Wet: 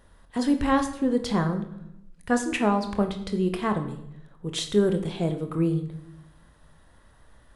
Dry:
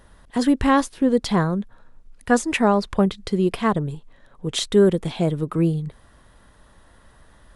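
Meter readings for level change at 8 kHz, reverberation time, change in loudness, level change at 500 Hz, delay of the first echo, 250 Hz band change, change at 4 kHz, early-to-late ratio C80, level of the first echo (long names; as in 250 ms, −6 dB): −5.0 dB, 0.85 s, −5.0 dB, −5.5 dB, no echo audible, −4.5 dB, −5.0 dB, 13.0 dB, no echo audible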